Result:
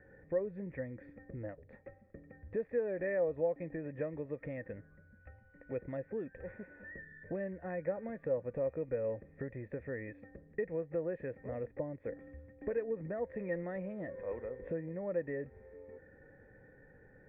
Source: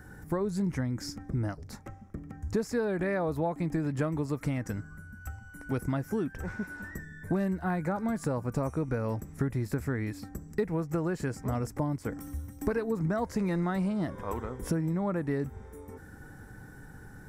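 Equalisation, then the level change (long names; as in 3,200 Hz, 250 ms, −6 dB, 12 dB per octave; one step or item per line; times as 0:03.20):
formant resonators in series e
+5.0 dB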